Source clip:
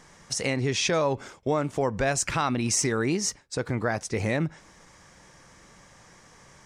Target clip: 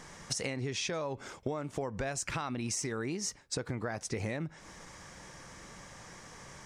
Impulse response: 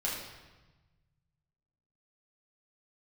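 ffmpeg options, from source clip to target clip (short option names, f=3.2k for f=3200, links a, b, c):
-af "acompressor=threshold=-35dB:ratio=12,volume=3dB"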